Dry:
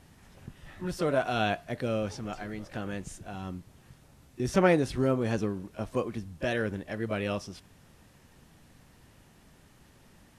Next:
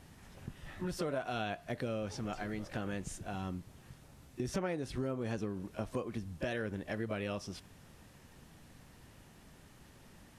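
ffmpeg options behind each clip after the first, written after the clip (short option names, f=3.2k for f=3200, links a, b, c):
-af "acompressor=threshold=-34dB:ratio=5"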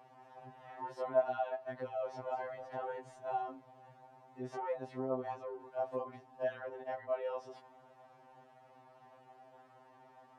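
-af "alimiter=level_in=6.5dB:limit=-24dB:level=0:latency=1:release=12,volume=-6.5dB,bandpass=f=770:t=q:w=3.2:csg=0,afftfilt=real='re*2.45*eq(mod(b,6),0)':imag='im*2.45*eq(mod(b,6),0)':win_size=2048:overlap=0.75,volume=13dB"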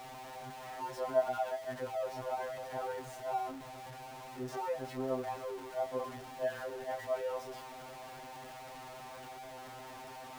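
-af "aeval=exprs='val(0)+0.5*0.00631*sgn(val(0))':c=same"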